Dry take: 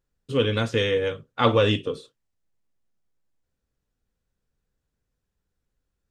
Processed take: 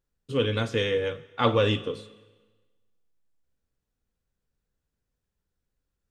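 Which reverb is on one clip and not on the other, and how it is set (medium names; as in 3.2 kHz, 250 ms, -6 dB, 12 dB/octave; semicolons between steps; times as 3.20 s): Schroeder reverb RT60 1.3 s, combs from 29 ms, DRR 16 dB; trim -3 dB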